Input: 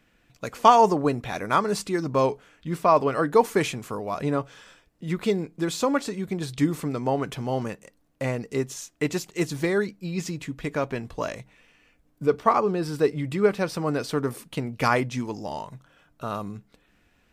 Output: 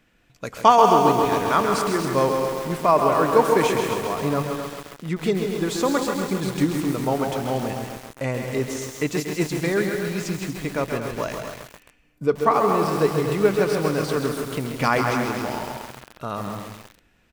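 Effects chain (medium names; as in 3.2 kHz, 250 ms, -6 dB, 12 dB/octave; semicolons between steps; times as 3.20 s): loudspeakers at several distances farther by 55 m -9 dB, 81 m -10 dB; bit-crushed delay 134 ms, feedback 80%, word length 6-bit, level -6 dB; trim +1 dB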